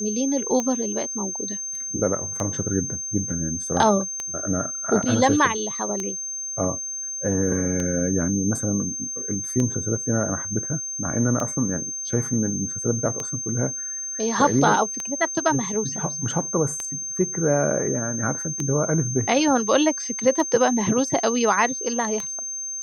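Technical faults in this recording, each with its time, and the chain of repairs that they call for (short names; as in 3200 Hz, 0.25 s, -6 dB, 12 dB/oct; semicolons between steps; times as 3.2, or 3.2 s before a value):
tick 33 1/3 rpm -13 dBFS
tone 6300 Hz -28 dBFS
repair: de-click; notch 6300 Hz, Q 30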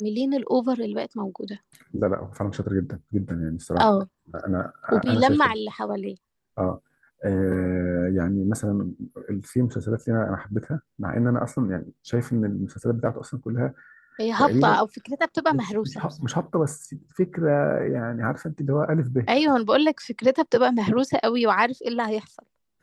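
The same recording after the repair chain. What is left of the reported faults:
none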